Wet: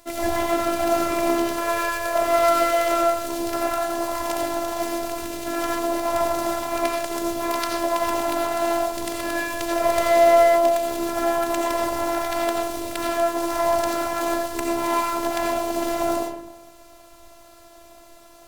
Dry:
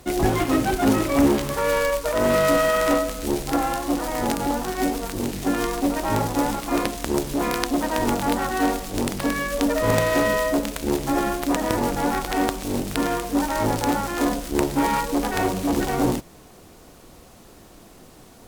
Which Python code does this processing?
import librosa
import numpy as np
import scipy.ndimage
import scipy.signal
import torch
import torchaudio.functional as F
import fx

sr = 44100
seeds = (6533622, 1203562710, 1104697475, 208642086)

y = fx.low_shelf_res(x, sr, hz=460.0, db=-6.0, q=1.5)
y = fx.rev_freeverb(y, sr, rt60_s=0.94, hf_ratio=0.4, predelay_ms=45, drr_db=-2.5)
y = fx.robotise(y, sr, hz=338.0)
y = y * librosa.db_to_amplitude(-1.5)